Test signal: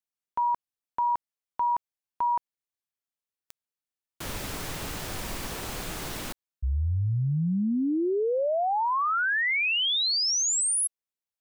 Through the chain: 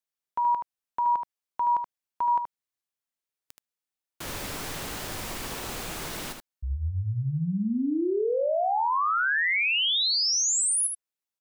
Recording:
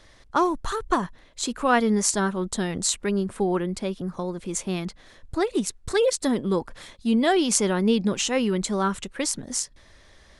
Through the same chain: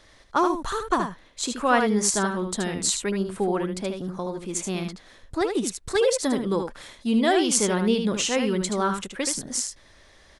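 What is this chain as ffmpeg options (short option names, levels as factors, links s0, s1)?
-filter_complex "[0:a]lowshelf=f=190:g=-4.5,asplit=2[s0][s1];[s1]aecho=0:1:76:0.473[s2];[s0][s2]amix=inputs=2:normalize=0"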